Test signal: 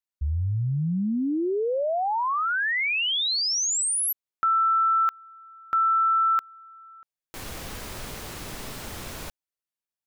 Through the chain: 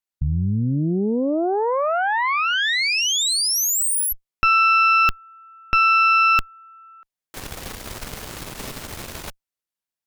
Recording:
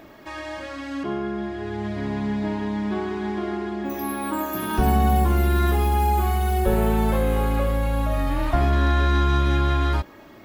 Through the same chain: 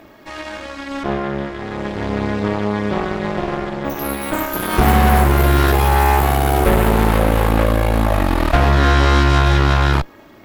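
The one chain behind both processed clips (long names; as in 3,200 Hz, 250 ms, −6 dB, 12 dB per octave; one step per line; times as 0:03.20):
harmonic generator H 7 −26 dB, 8 −14 dB, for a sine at −8 dBFS
level +5.5 dB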